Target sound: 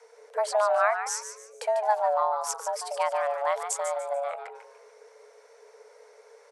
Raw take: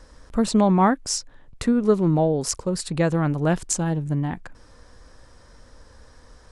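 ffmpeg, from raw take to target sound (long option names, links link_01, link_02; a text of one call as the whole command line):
ffmpeg -i in.wav -filter_complex "[0:a]asplit=5[link_01][link_02][link_03][link_04][link_05];[link_02]adelay=146,afreqshift=120,volume=-9dB[link_06];[link_03]adelay=292,afreqshift=240,volume=-18.6dB[link_07];[link_04]adelay=438,afreqshift=360,volume=-28.3dB[link_08];[link_05]adelay=584,afreqshift=480,volume=-37.9dB[link_09];[link_01][link_06][link_07][link_08][link_09]amix=inputs=5:normalize=0,afreqshift=420,volume=-6.5dB" out.wav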